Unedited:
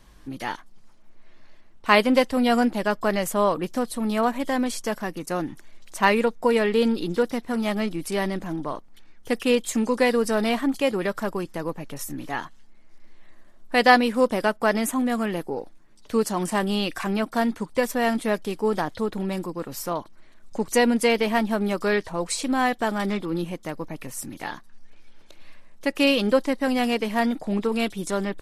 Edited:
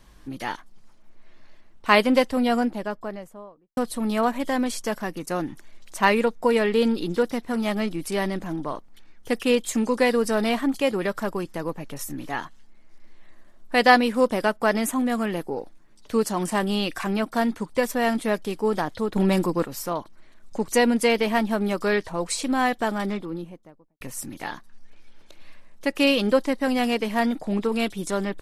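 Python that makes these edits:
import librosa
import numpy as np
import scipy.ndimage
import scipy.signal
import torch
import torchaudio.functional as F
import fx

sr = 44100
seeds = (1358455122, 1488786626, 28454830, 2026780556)

y = fx.studio_fade_out(x, sr, start_s=2.08, length_s=1.69)
y = fx.studio_fade_out(y, sr, start_s=22.77, length_s=1.24)
y = fx.edit(y, sr, fx.clip_gain(start_s=19.16, length_s=0.5, db=7.5), tone=tone)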